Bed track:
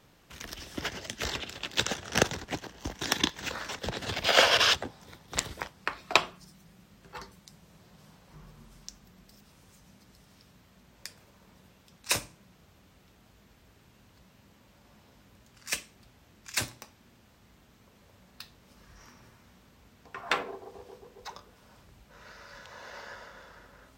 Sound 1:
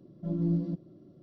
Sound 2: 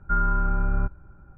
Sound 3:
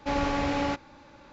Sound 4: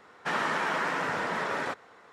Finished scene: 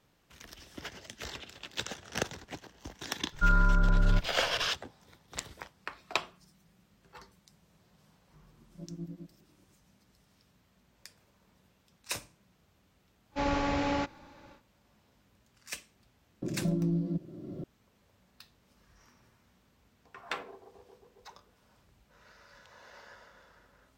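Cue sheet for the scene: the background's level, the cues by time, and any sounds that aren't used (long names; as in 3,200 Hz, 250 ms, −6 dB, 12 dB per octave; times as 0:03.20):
bed track −8.5 dB
0:03.32: mix in 2 −2.5 dB + comb filter 6.9 ms, depth 66%
0:08.52: mix in 1 −11 dB + tremolo along a rectified sine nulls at 10 Hz
0:13.30: mix in 3 −2.5 dB, fades 0.10 s
0:16.42: mix in 1 + multiband upward and downward compressor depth 100%
not used: 4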